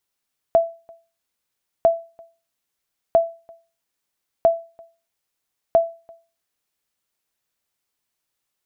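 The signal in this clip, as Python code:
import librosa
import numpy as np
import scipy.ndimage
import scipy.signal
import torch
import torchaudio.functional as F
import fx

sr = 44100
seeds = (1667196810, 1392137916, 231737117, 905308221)

y = fx.sonar_ping(sr, hz=667.0, decay_s=0.33, every_s=1.3, pings=5, echo_s=0.34, echo_db=-29.0, level_db=-7.0)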